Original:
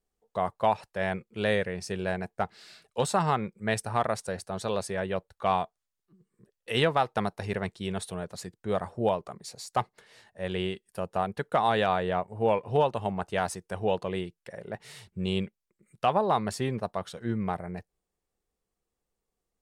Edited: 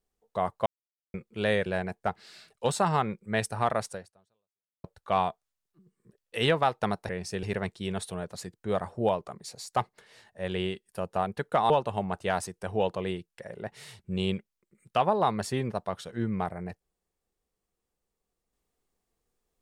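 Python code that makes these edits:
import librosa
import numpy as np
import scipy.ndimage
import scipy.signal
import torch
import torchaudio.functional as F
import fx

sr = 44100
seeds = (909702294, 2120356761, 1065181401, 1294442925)

y = fx.edit(x, sr, fx.silence(start_s=0.66, length_s=0.48),
    fx.move(start_s=1.66, length_s=0.34, to_s=7.43),
    fx.fade_out_span(start_s=4.25, length_s=0.93, curve='exp'),
    fx.cut(start_s=11.7, length_s=1.08), tone=tone)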